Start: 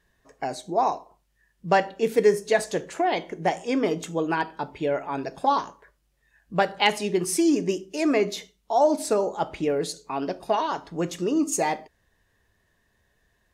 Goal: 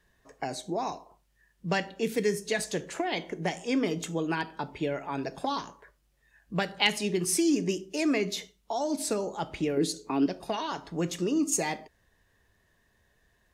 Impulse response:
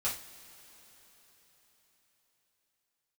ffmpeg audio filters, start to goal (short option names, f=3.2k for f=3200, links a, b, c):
-filter_complex "[0:a]asettb=1/sr,asplit=3[a][b][c];[a]atrim=end=9.774[d];[b]atrim=start=9.77:end=10.26,asetpts=PTS-STARTPTS,afade=t=in:d=0.004:c=qsin,afade=t=out:st=0.486:d=0.004:c=qsin,equalizer=f=320:t=o:w=0.94:g=13[e];[c]atrim=start=10.256[f];[d][e]acrossfade=d=0.004:c1=hsin:c2=qsin[g];[g][f]acrossfade=d=0.004:c1=qsin:c2=hsin,acrossover=split=290|1800[h][i][j];[i]acompressor=threshold=-32dB:ratio=6[k];[h][k][j]amix=inputs=3:normalize=0"